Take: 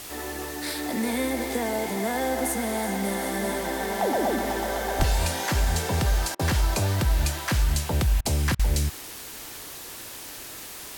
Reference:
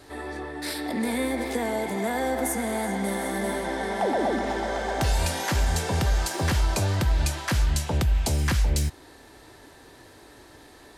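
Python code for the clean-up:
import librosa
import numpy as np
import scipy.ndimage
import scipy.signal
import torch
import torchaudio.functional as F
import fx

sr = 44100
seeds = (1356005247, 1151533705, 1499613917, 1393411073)

y = fx.highpass(x, sr, hz=140.0, slope=24, at=(4.98, 5.1), fade=0.02)
y = fx.fix_interpolate(y, sr, at_s=(6.35, 8.21, 8.55), length_ms=42.0)
y = fx.noise_reduce(y, sr, print_start_s=10.44, print_end_s=10.94, reduce_db=10.0)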